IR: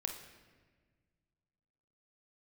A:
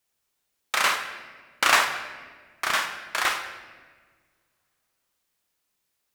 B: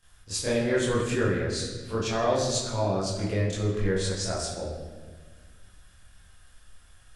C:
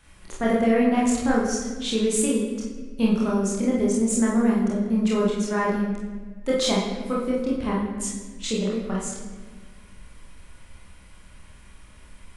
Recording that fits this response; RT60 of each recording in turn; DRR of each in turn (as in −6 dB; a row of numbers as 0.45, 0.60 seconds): A; 1.5, 1.5, 1.5 seconds; 3.5, −13.0, −5.0 decibels